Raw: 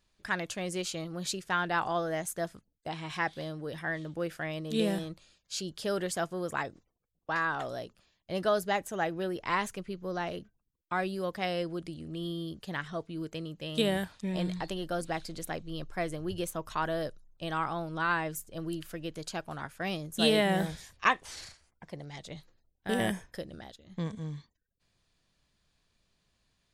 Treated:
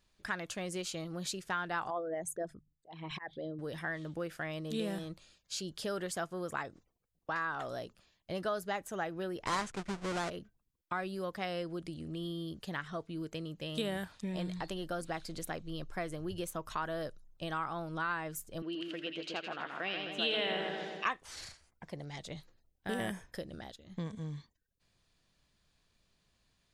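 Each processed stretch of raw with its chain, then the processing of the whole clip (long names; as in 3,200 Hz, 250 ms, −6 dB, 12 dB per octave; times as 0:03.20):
0:01.90–0:03.59: spectral envelope exaggerated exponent 2 + mains-hum notches 50/100/150 Hz + volume swells 261 ms
0:09.46–0:10.30: each half-wave held at its own peak + low-pass filter 8,800 Hz 24 dB per octave
0:18.62–0:21.06: Chebyshev band-pass filter 310–3,700 Hz + parametric band 2,800 Hz +9 dB 0.55 octaves + echo with a time of its own for lows and highs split 1,800 Hz, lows 129 ms, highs 82 ms, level −4 dB
whole clip: dynamic equaliser 1,300 Hz, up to +4 dB, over −46 dBFS, Q 2.2; downward compressor 2 to 1, threshold −38 dBFS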